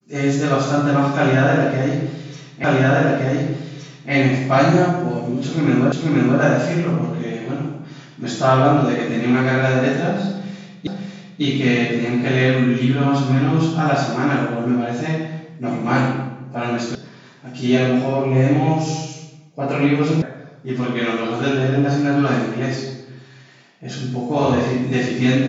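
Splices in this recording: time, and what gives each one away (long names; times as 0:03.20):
0:02.64: the same again, the last 1.47 s
0:05.92: the same again, the last 0.48 s
0:10.87: the same again, the last 0.55 s
0:16.95: cut off before it has died away
0:20.22: cut off before it has died away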